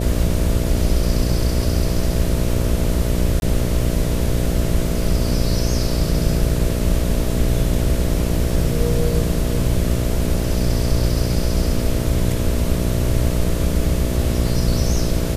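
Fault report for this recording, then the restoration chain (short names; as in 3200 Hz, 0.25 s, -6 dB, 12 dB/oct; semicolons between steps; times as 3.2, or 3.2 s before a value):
buzz 60 Hz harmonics 11 -22 dBFS
3.4–3.42 gap 21 ms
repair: de-hum 60 Hz, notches 11; interpolate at 3.4, 21 ms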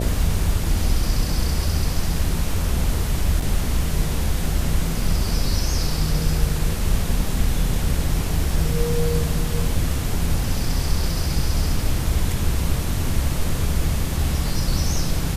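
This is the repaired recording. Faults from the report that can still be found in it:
none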